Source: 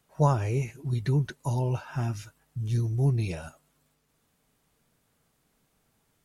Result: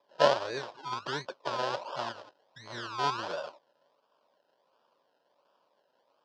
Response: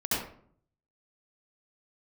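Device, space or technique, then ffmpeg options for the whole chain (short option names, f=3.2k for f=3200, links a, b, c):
circuit-bent sampling toy: -af "acrusher=samples=30:mix=1:aa=0.000001:lfo=1:lforange=18:lforate=1.4,highpass=520,equalizer=f=570:t=q:w=4:g=10,equalizer=f=1k:t=q:w=4:g=9,equalizer=f=1.5k:t=q:w=4:g=4,equalizer=f=2.1k:t=q:w=4:g=-10,equalizer=f=3.1k:t=q:w=4:g=4,equalizer=f=4.9k:t=q:w=4:g=6,lowpass=f=5.3k:w=0.5412,lowpass=f=5.3k:w=1.3066"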